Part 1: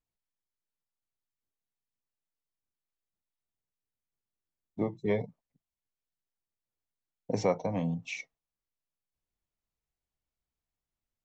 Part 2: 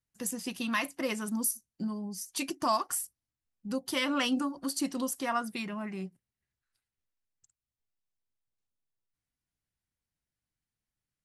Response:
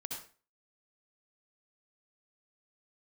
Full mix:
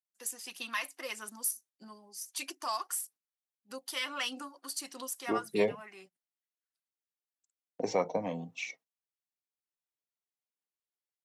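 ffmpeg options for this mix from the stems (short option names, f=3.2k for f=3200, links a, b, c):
-filter_complex "[0:a]adelay=500,volume=-0.5dB[a];[1:a]highpass=f=1.2k:p=1,volume=-2.5dB[b];[a][b]amix=inputs=2:normalize=0,agate=range=-10dB:threshold=-55dB:ratio=16:detection=peak,highpass=260,aphaser=in_gain=1:out_gain=1:delay=2.8:decay=0.31:speed=1.6:type=sinusoidal"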